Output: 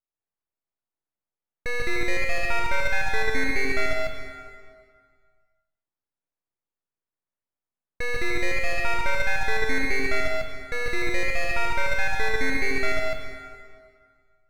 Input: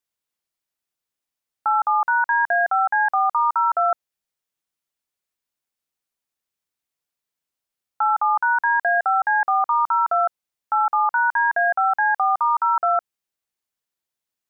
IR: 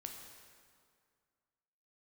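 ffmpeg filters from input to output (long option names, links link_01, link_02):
-filter_complex "[0:a]lowpass=1100,lowshelf=frequency=430:gain=5,aeval=exprs='abs(val(0))':channel_layout=same,asplit=2[link_01][link_02];[1:a]atrim=start_sample=2205,adelay=141[link_03];[link_02][link_03]afir=irnorm=-1:irlink=0,volume=4.5dB[link_04];[link_01][link_04]amix=inputs=2:normalize=0,volume=-3.5dB"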